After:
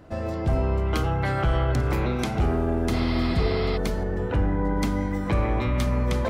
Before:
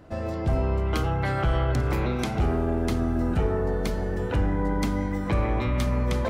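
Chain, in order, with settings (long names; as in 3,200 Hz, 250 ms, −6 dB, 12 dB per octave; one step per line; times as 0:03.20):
0:02.96–0:03.74: healed spectral selection 490–5,500 Hz before
0:04.03–0:04.77: high-shelf EQ 4,000 Hz −9.5 dB
level +1 dB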